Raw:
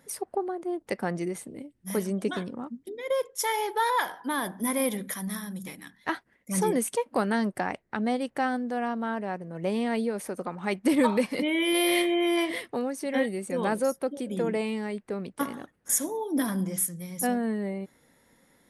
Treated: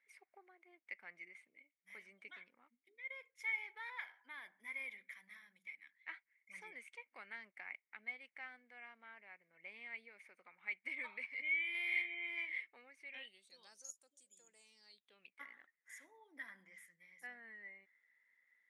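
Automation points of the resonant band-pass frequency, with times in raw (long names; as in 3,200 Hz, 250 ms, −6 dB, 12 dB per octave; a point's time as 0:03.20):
resonant band-pass, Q 14
0:13.05 2,200 Hz
0:13.93 7,100 Hz
0:14.58 7,100 Hz
0:15.44 2,000 Hz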